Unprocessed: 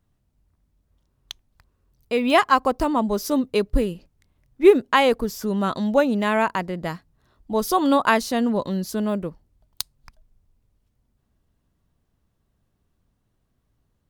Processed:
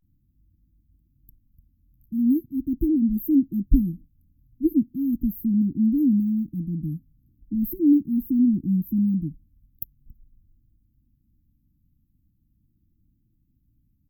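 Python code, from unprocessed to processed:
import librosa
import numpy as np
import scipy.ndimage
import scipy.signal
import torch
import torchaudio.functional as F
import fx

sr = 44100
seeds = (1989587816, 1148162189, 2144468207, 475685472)

y = fx.brickwall_bandstop(x, sr, low_hz=340.0, high_hz=12000.0)
y = fx.vibrato(y, sr, rate_hz=0.4, depth_cents=85.0)
y = y * 10.0 ** (4.0 / 20.0)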